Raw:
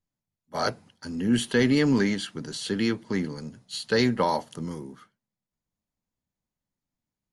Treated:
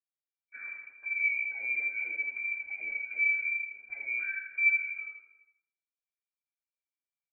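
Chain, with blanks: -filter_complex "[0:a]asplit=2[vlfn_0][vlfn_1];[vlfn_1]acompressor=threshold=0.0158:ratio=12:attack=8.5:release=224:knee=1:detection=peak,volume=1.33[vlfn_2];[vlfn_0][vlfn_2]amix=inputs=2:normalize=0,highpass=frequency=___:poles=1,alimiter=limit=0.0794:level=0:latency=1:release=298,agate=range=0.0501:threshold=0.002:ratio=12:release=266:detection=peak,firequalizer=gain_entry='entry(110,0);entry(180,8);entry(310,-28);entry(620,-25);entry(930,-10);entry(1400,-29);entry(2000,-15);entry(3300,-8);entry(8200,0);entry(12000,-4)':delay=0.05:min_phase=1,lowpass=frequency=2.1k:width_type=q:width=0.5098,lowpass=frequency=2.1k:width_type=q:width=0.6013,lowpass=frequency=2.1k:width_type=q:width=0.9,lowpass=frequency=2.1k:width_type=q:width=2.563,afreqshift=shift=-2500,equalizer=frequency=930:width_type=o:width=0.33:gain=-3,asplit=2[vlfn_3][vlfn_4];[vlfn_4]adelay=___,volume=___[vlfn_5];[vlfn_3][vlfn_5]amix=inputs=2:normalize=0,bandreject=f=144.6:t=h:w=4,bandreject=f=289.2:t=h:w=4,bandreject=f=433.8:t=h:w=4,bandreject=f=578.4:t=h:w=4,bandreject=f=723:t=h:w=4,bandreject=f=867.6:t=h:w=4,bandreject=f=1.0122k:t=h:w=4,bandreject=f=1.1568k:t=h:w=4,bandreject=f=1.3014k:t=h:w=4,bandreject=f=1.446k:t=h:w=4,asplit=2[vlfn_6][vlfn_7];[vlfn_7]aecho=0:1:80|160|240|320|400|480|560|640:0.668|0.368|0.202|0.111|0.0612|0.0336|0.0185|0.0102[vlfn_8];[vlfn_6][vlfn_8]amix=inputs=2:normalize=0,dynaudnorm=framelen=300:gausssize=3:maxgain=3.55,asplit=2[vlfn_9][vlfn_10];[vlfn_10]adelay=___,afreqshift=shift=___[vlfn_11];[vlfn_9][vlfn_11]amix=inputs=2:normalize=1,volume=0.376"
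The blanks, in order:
100, 48, 0.299, 6.4, -2.8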